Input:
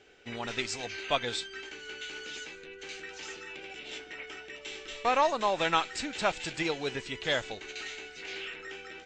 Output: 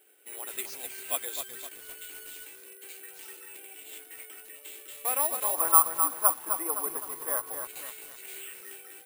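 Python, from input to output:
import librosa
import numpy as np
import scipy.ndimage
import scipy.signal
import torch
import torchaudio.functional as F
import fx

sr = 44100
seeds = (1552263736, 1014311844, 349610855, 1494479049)

y = fx.lowpass_res(x, sr, hz=1100.0, q=12.0, at=(5.54, 7.65))
y = (np.kron(scipy.signal.resample_poly(y, 1, 4), np.eye(4)[0]) * 4)[:len(y)]
y = fx.brickwall_highpass(y, sr, low_hz=260.0)
y = fx.echo_crushed(y, sr, ms=257, feedback_pct=55, bits=5, wet_db=-6.5)
y = y * librosa.db_to_amplitude(-8.5)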